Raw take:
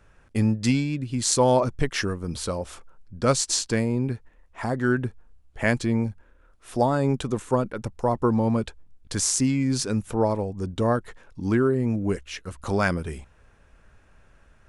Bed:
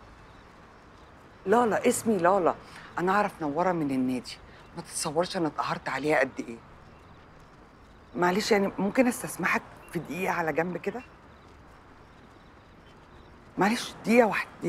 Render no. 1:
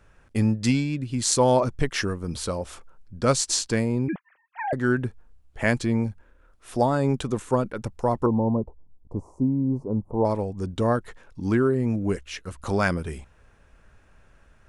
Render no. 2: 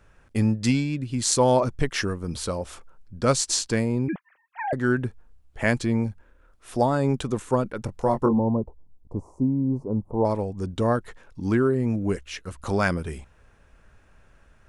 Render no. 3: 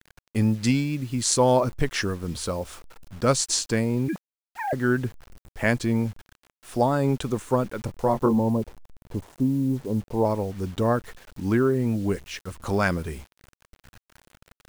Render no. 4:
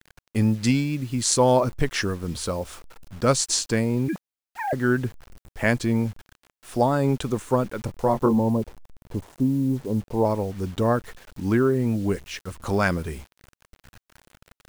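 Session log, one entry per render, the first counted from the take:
4.08–4.73 sine-wave speech; 8.26–10.25 elliptic low-pass 1000 Hz
7.86–8.39 doubler 22 ms -5 dB
bit-crush 8-bit
gain +1 dB

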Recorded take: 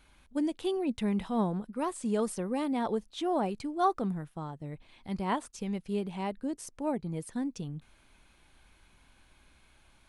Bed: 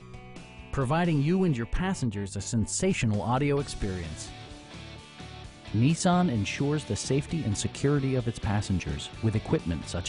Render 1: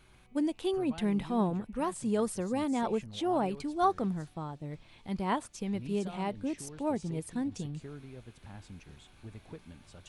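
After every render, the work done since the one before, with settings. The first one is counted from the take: add bed -20.5 dB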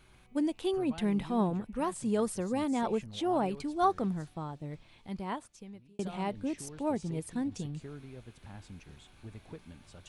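4.63–5.99 fade out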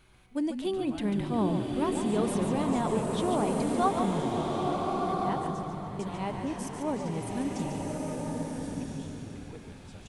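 on a send: frequency-shifting echo 0.143 s, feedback 31%, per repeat -50 Hz, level -7.5 dB; on the sum: bloom reverb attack 1.39 s, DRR -0.5 dB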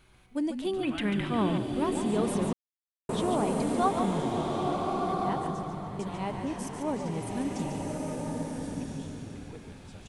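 0.83–1.58 band shelf 2000 Hz +9.5 dB; 2.53–3.09 mute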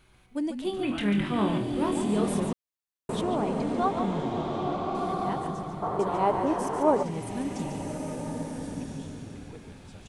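0.64–2.4 flutter echo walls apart 4.2 m, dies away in 0.24 s; 3.21–4.95 air absorption 100 m; 5.82–7.03 band shelf 700 Hz +11.5 dB 2.5 oct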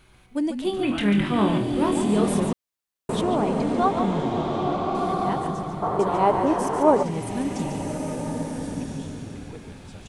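gain +5 dB

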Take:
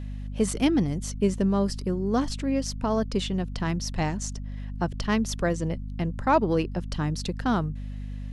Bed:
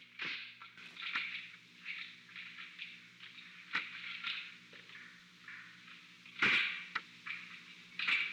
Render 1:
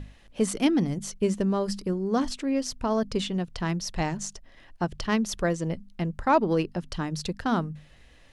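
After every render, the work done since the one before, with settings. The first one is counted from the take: notches 50/100/150/200/250 Hz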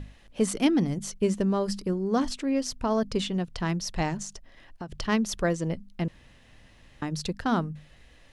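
4.22–4.9 compressor, threshold -33 dBFS; 6.08–7.02 room tone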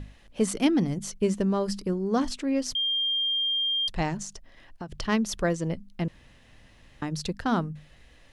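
2.75–3.88 bleep 3200 Hz -23.5 dBFS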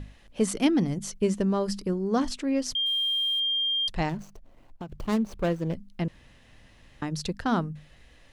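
2.86–3.4 sample gate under -40 dBFS; 4.09–5.75 median filter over 25 samples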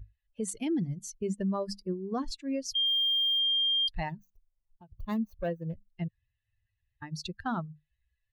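per-bin expansion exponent 2; limiter -24 dBFS, peak gain reduction 11.5 dB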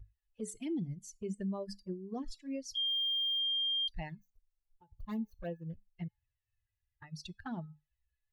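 resonator 430 Hz, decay 0.26 s, harmonics all, mix 50%; envelope flanger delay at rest 2.5 ms, full sweep at -32.5 dBFS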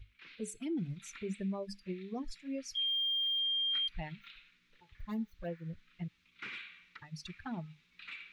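add bed -14 dB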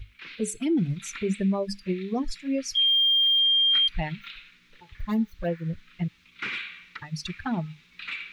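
gain +12 dB

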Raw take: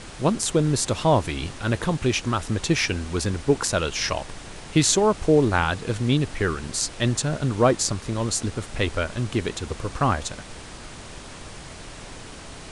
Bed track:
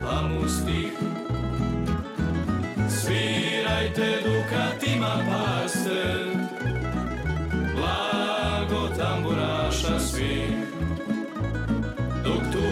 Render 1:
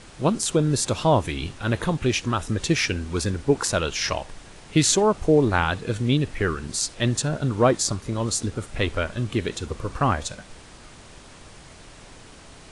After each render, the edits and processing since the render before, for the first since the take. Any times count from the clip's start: noise print and reduce 6 dB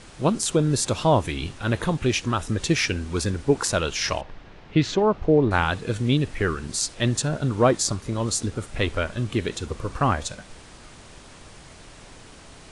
4.21–5.51 air absorption 240 m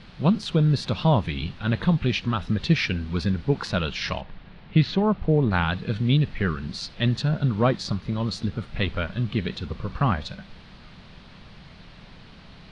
EQ curve 110 Hz 0 dB, 190 Hz +7 dB, 300 Hz -6 dB, 4300 Hz 0 dB, 7400 Hz -25 dB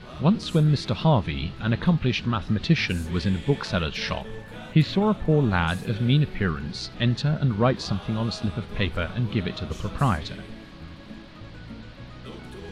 add bed track -15.5 dB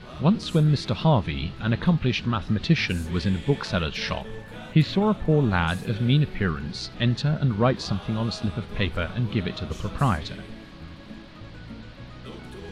nothing audible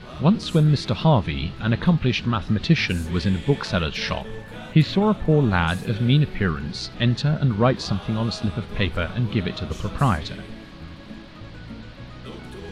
gain +2.5 dB

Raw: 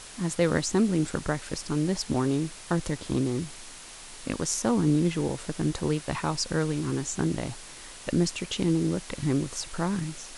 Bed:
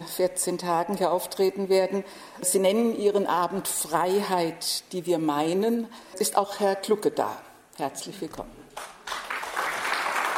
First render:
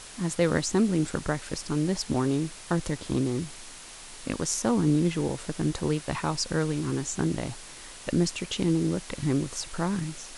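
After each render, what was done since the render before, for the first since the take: nothing audible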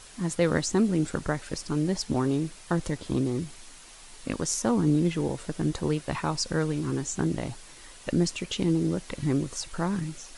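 denoiser 6 dB, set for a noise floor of -45 dBFS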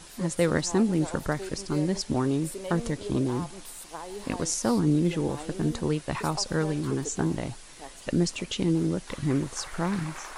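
add bed -15.5 dB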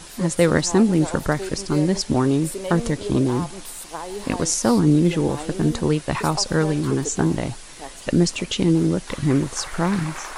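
gain +7 dB

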